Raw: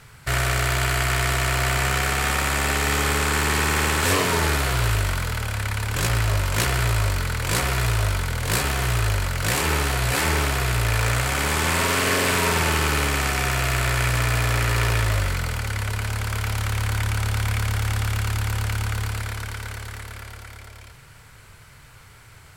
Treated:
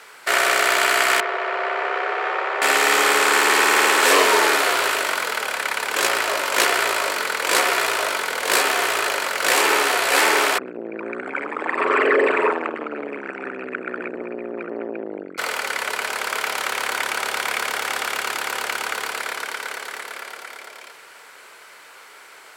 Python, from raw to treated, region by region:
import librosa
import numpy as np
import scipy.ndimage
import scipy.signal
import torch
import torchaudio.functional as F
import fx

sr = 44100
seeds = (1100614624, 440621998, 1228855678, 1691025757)

y = fx.chain(x, sr, fx.brickwall_highpass(low_hz=330.0),
    fx.spacing_loss(db_at_10k=44), at=(1.2, 2.62))
y = fx.chain(y, sr, fx.envelope_sharpen(power=3.0),
    fx.lowpass(hz=3900.0, slope=6),
    fx.transformer_sat(knee_hz=390.0), at=(10.58, 15.38))
y = scipy.signal.sosfilt(scipy.signal.butter(4, 360.0, 'highpass', fs=sr, output='sos'), y)
y = fx.high_shelf(y, sr, hz=5300.0, db=-5.0)
y = y * librosa.db_to_amplitude(7.5)